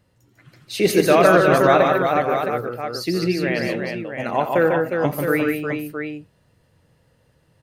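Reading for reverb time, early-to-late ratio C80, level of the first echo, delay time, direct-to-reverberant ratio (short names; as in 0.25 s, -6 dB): none, none, -13.5 dB, 86 ms, none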